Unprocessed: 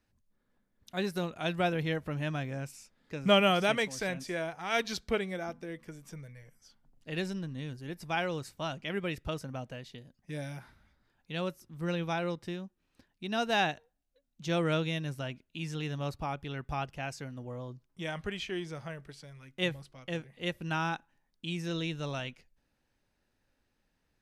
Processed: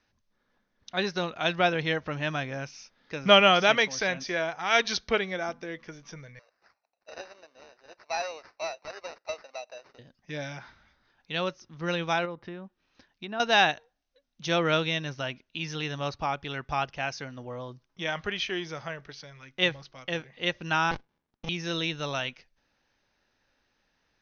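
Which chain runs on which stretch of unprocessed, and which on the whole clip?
0:06.39–0:09.99: four-pole ladder high-pass 560 Hz, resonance 60% + parametric band 1,800 Hz −4.5 dB 0.42 octaves + sample-rate reduction 3,300 Hz
0:12.25–0:13.40: treble cut that deepens with the level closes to 1,600 Hz, closed at −34 dBFS + downward compressor 2 to 1, threshold −39 dBFS
0:20.91–0:21.49: high-pass filter 140 Hz + windowed peak hold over 65 samples
whole clip: Chebyshev low-pass filter 6,300 Hz, order 8; low-shelf EQ 400 Hz −10 dB; level +9 dB

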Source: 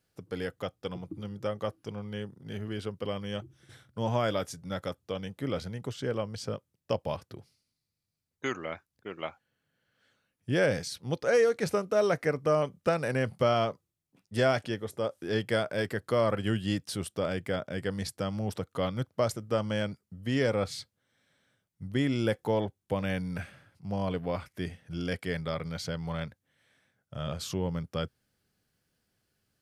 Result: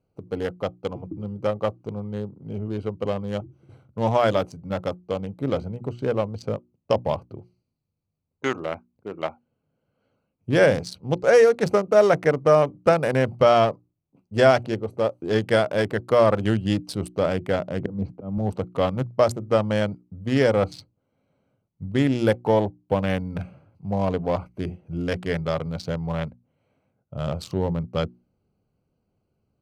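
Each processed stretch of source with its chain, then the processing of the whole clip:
0:17.80–0:18.38: volume swells 253 ms + band-pass filter 110–2,100 Hz + low-shelf EQ 420 Hz +9 dB
whole clip: adaptive Wiener filter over 25 samples; mains-hum notches 60/120/180/240/300/360 Hz; dynamic equaliser 790 Hz, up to +4 dB, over −43 dBFS, Q 1.3; level +7.5 dB

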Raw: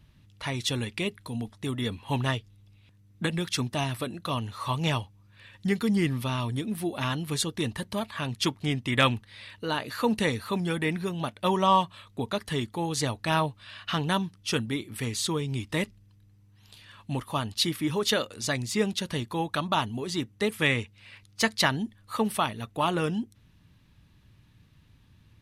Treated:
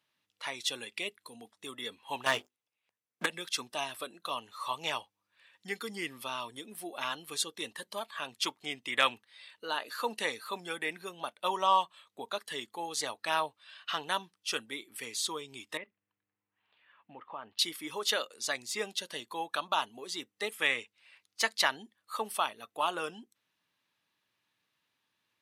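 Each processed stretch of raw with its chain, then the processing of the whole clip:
0:02.26–0:03.26: parametric band 3,900 Hz −7 dB 0.57 octaves + mains-hum notches 50/100/150/200/250/300/350/400 Hz + leveller curve on the samples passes 3
0:15.77–0:17.59: low-pass filter 2,600 Hz 24 dB per octave + downward compressor 12 to 1, threshold −30 dBFS
whole clip: high-pass filter 590 Hz 12 dB per octave; noise reduction from a noise print of the clip's start 7 dB; level −3 dB

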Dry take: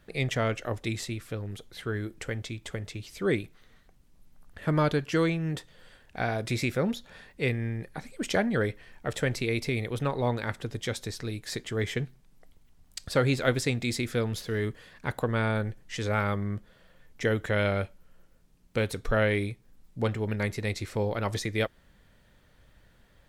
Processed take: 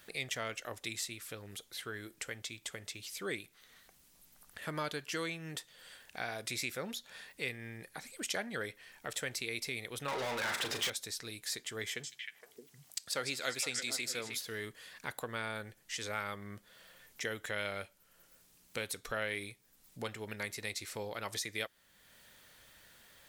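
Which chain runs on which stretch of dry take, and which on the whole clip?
0:10.08–0:10.90: mid-hump overdrive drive 35 dB, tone 2,000 Hz, clips at −14 dBFS + downward compressor 3 to 1, threshold −24 dBFS + double-tracking delay 38 ms −8.5 dB
0:11.88–0:14.38: high-pass filter 180 Hz 6 dB per octave + echo through a band-pass that steps 155 ms, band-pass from 6,000 Hz, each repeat −1.4 octaves, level −1 dB
whole clip: spectral tilt +3.5 dB per octave; downward compressor 1.5 to 1, threshold −58 dBFS; level +2 dB

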